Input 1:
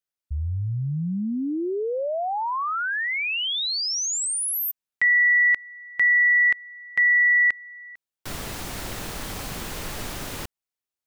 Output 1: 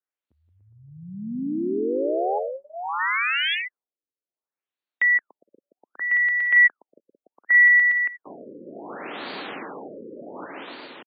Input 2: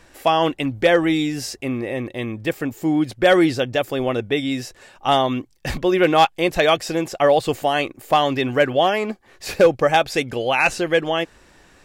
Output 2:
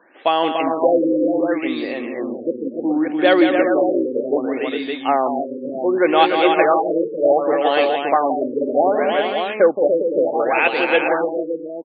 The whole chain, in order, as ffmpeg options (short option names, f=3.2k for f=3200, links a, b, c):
-filter_complex "[0:a]highpass=f=250:w=0.5412,highpass=f=250:w=1.3066,asplit=2[a][b];[b]aecho=0:1:173|291|409|462|471|569:0.422|0.531|0.422|0.106|0.126|0.531[c];[a][c]amix=inputs=2:normalize=0,afftfilt=real='re*lt(b*sr/1024,550*pow(4800/550,0.5+0.5*sin(2*PI*0.67*pts/sr)))':imag='im*lt(b*sr/1024,550*pow(4800/550,0.5+0.5*sin(2*PI*0.67*pts/sr)))':win_size=1024:overlap=0.75"